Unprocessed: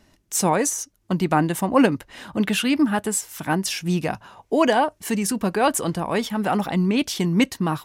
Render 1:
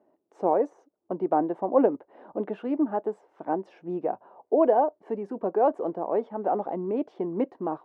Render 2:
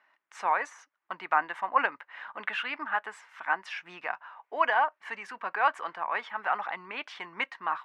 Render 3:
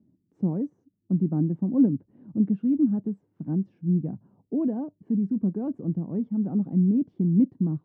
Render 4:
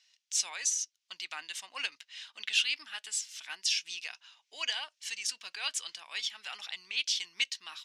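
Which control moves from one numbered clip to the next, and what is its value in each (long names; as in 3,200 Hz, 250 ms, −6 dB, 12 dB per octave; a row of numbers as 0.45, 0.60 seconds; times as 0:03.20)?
flat-topped band-pass, frequency: 520, 1,400, 190, 4,100 Hertz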